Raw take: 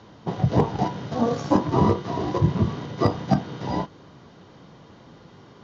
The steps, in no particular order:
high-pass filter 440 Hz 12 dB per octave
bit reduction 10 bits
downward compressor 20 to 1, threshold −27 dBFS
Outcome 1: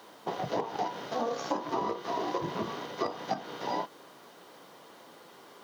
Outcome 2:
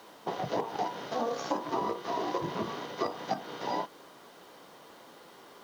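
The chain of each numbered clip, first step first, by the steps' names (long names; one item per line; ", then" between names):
bit reduction, then high-pass filter, then downward compressor
high-pass filter, then downward compressor, then bit reduction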